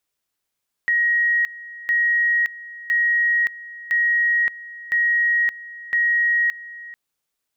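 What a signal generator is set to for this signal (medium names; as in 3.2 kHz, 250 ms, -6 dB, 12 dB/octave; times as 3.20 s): two-level tone 1.89 kHz -15.5 dBFS, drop 18.5 dB, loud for 0.57 s, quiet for 0.44 s, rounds 6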